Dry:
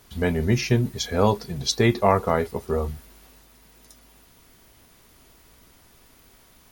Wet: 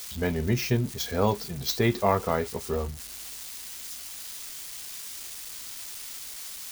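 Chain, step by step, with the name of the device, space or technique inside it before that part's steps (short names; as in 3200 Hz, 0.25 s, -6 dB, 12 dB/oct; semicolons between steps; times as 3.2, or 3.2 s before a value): budget class-D amplifier (switching dead time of 0.053 ms; switching spikes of -21.5 dBFS); gain -4.5 dB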